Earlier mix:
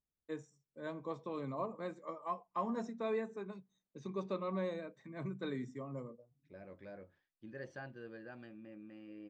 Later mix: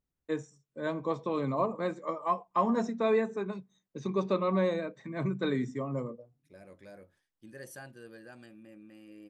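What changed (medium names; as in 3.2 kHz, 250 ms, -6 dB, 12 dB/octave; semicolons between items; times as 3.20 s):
first voice +10.0 dB; second voice: remove Gaussian low-pass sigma 2.2 samples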